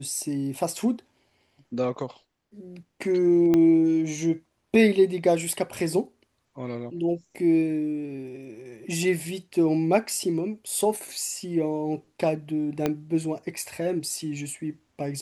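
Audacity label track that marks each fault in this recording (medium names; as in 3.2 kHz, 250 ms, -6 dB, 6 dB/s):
3.540000	3.540000	pop -11 dBFS
12.860000	12.860000	pop -11 dBFS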